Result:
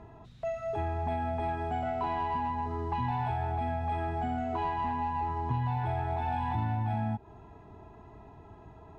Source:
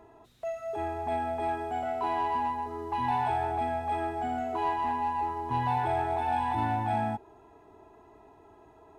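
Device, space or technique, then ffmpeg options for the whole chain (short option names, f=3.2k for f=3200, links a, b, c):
jukebox: -af "lowpass=5.3k,lowshelf=f=240:t=q:w=1.5:g=9.5,acompressor=threshold=-31dB:ratio=5,volume=2.5dB"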